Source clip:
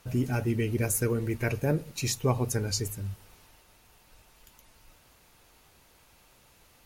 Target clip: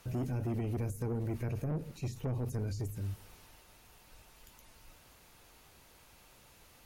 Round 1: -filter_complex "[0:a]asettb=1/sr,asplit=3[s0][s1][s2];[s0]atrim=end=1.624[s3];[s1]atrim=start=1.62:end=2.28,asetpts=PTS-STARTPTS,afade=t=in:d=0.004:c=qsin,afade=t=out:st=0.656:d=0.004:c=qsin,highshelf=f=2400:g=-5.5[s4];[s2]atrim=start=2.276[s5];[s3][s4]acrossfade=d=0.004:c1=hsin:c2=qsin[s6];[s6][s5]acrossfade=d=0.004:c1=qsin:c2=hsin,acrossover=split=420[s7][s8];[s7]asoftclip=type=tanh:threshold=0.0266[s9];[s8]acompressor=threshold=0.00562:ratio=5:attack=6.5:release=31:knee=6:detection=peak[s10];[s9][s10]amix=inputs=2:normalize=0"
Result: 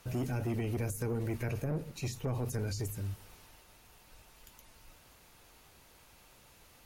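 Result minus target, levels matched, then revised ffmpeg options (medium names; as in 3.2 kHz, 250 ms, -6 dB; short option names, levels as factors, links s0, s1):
compression: peak gain reduction -8.5 dB
-filter_complex "[0:a]asettb=1/sr,asplit=3[s0][s1][s2];[s0]atrim=end=1.624[s3];[s1]atrim=start=1.62:end=2.28,asetpts=PTS-STARTPTS,afade=t=in:d=0.004:c=qsin,afade=t=out:st=0.656:d=0.004:c=qsin,highshelf=f=2400:g=-5.5[s4];[s2]atrim=start=2.276[s5];[s3][s4]acrossfade=d=0.004:c1=hsin:c2=qsin[s6];[s6][s5]acrossfade=d=0.004:c1=qsin:c2=hsin,acrossover=split=420[s7][s8];[s7]asoftclip=type=tanh:threshold=0.0266[s9];[s8]acompressor=threshold=0.00168:ratio=5:attack=6.5:release=31:knee=6:detection=peak[s10];[s9][s10]amix=inputs=2:normalize=0"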